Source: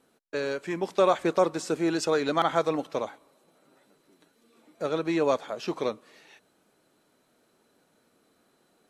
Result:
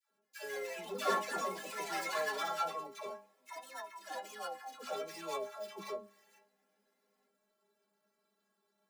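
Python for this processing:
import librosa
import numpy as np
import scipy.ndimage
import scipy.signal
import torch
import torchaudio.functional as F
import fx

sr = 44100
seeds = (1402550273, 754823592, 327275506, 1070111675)

y = scipy.signal.medfilt(x, 15)
y = fx.tilt_eq(y, sr, slope=3.0)
y = fx.stiff_resonator(y, sr, f0_hz=200.0, decay_s=0.31, stiffness=0.008)
y = fx.echo_pitch(y, sr, ms=213, semitones=4, count=2, db_per_echo=-3.0)
y = fx.dispersion(y, sr, late='lows', ms=122.0, hz=670.0)
y = y * 10.0 ** (3.5 / 20.0)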